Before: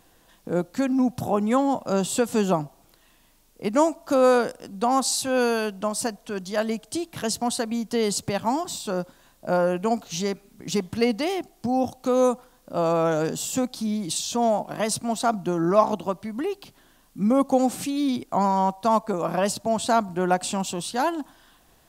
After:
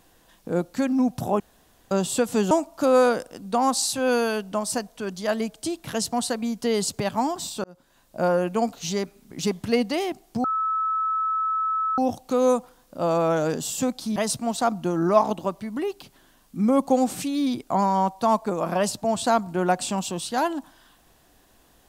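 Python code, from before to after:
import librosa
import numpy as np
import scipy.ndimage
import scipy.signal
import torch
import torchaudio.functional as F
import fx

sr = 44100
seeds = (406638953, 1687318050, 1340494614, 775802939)

y = fx.edit(x, sr, fx.room_tone_fill(start_s=1.4, length_s=0.51),
    fx.cut(start_s=2.51, length_s=1.29),
    fx.fade_in_span(start_s=8.93, length_s=0.56),
    fx.insert_tone(at_s=11.73, length_s=1.54, hz=1300.0, db=-21.5),
    fx.cut(start_s=13.91, length_s=0.87), tone=tone)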